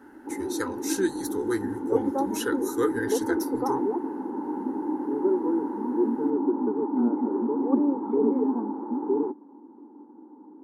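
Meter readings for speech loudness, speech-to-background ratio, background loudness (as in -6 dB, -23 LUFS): -31.5 LUFS, -4.0 dB, -27.5 LUFS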